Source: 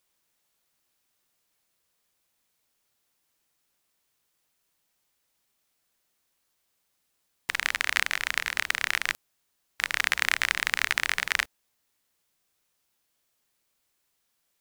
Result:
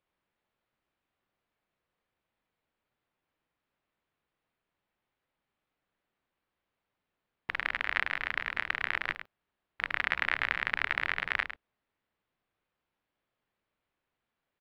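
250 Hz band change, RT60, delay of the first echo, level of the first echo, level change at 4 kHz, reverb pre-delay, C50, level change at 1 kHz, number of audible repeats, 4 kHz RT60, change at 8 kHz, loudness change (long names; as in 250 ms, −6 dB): −0.5 dB, no reverb audible, 105 ms, −10.5 dB, −10.0 dB, no reverb audible, no reverb audible, −2.0 dB, 1, no reverb audible, below −25 dB, −5.0 dB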